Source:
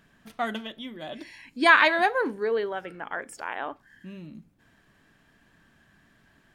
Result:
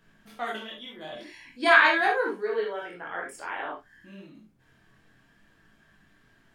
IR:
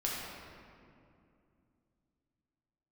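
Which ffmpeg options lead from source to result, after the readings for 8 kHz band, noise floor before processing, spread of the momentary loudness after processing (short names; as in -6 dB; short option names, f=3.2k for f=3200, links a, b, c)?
-1.5 dB, -63 dBFS, 23 LU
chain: -filter_complex "[0:a]acrossover=split=270[a][b];[a]acompressor=threshold=-53dB:ratio=6[c];[c][b]amix=inputs=2:normalize=0,flanger=delay=18.5:depth=5.8:speed=0.52[d];[1:a]atrim=start_sample=2205,atrim=end_sample=3528[e];[d][e]afir=irnorm=-1:irlink=0"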